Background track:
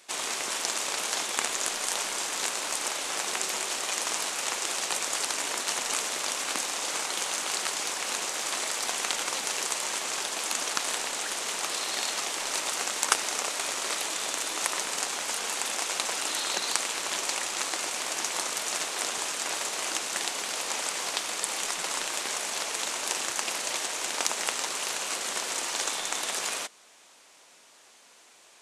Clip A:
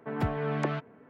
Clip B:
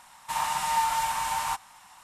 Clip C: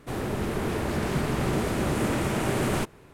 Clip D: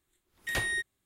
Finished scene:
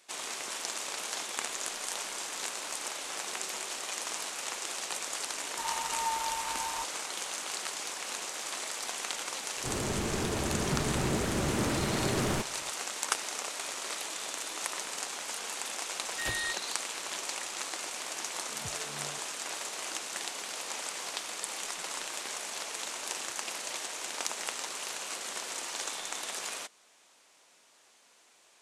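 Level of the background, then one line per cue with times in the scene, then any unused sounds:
background track −6.5 dB
0:05.29: mix in B −9.5 dB + comb filter 3.2 ms, depth 33%
0:09.57: mix in C −4.5 dB
0:15.71: mix in D −4 dB
0:18.42: mix in A −15 dB + frequency shifter mixed with the dry sound −2.6 Hz

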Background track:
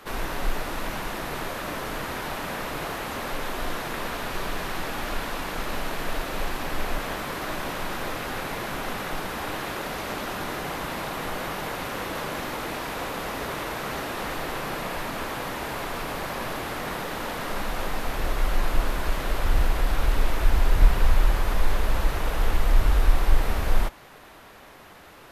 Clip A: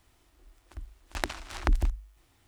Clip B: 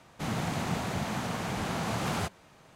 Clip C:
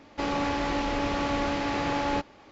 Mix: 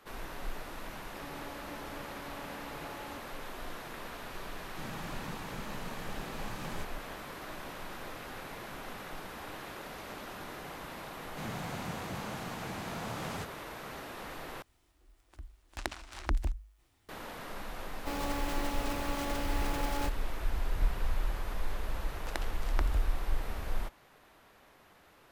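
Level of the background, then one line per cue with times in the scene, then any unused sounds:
background track −12.5 dB
0:00.97: mix in C −10.5 dB + downward compressor 4 to 1, threshold −35 dBFS
0:04.57: mix in B −11 dB + notch comb filter 700 Hz
0:11.17: mix in B −8.5 dB
0:14.62: overwrite with A −5.5 dB
0:17.88: mix in C −9 dB + one scale factor per block 3 bits
0:21.12: mix in A −7.5 dB + mu-law and A-law mismatch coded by A

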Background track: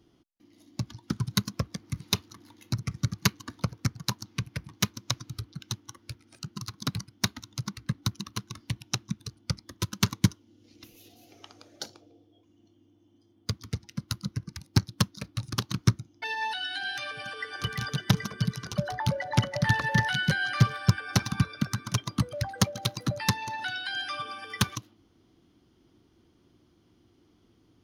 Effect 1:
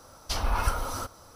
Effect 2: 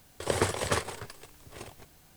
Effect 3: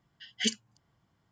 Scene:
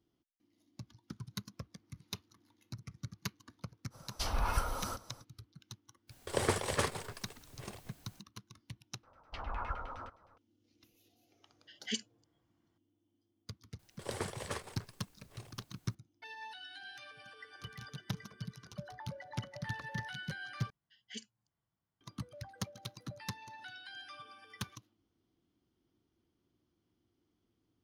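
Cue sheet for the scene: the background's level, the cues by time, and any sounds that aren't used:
background track −16 dB
0:03.90: mix in 1 −6 dB, fades 0.05 s
0:06.07: mix in 2 −4 dB, fades 0.05 s
0:09.03: overwrite with 1 −14 dB + auto-filter low-pass saw down 9.7 Hz 800–2,900 Hz
0:11.47: mix in 3 −8 dB
0:13.79: mix in 2 −12 dB
0:20.70: overwrite with 3 −17.5 dB

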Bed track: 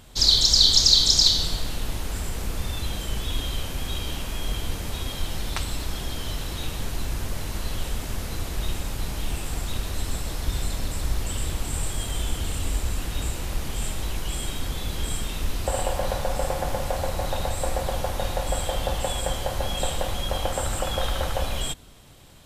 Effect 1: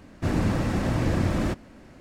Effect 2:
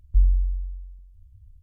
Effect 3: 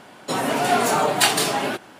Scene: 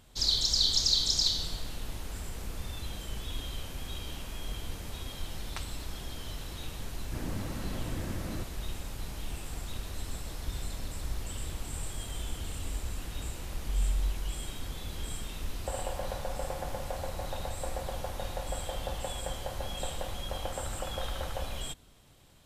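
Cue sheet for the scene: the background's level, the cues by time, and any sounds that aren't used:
bed track −9.5 dB
0:06.90: mix in 1 −14 dB
0:13.50: mix in 2 −2.5 dB + volume swells 410 ms
not used: 3

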